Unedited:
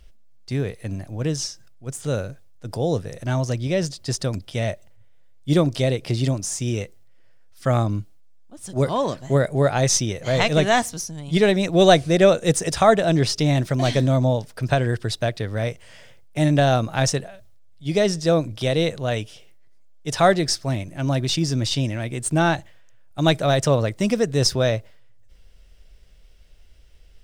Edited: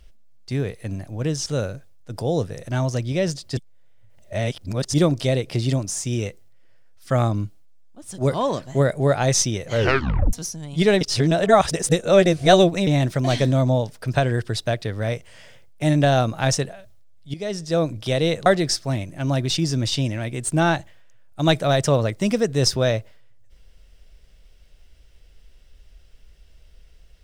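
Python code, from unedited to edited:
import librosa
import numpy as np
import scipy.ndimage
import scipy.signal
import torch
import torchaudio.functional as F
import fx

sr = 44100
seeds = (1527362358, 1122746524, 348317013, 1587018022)

y = fx.edit(x, sr, fx.cut(start_s=1.46, length_s=0.55),
    fx.reverse_span(start_s=4.12, length_s=1.37),
    fx.tape_stop(start_s=10.26, length_s=0.62),
    fx.reverse_span(start_s=11.56, length_s=1.86),
    fx.fade_in_from(start_s=17.89, length_s=0.6, floor_db=-15.0),
    fx.cut(start_s=19.01, length_s=1.24), tone=tone)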